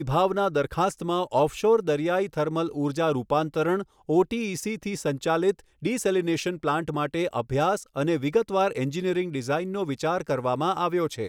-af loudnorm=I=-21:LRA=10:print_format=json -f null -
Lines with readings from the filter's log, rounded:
"input_i" : "-26.0",
"input_tp" : "-9.8",
"input_lra" : "1.4",
"input_thresh" : "-36.0",